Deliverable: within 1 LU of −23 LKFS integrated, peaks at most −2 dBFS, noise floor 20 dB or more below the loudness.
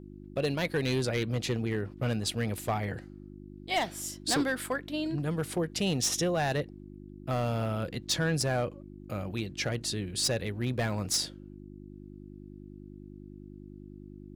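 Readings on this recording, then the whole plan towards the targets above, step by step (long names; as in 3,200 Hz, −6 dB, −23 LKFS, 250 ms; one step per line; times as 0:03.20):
share of clipped samples 0.8%; peaks flattened at −22.0 dBFS; mains hum 50 Hz; hum harmonics up to 350 Hz; level of the hum −44 dBFS; integrated loudness −31.0 LKFS; sample peak −22.0 dBFS; target loudness −23.0 LKFS
→ clipped peaks rebuilt −22 dBFS
hum removal 50 Hz, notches 7
level +8 dB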